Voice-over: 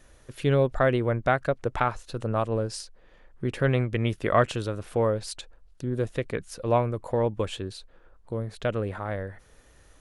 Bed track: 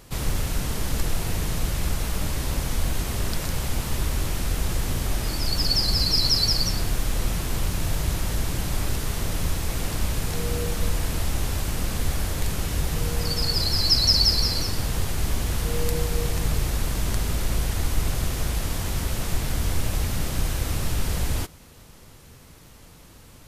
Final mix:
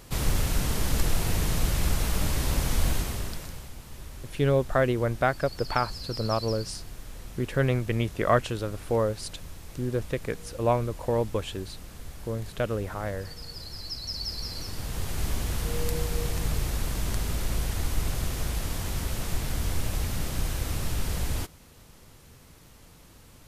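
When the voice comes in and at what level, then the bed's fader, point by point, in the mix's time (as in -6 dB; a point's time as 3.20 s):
3.95 s, -1.0 dB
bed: 2.91 s 0 dB
3.74 s -17 dB
14.02 s -17 dB
15.21 s -4 dB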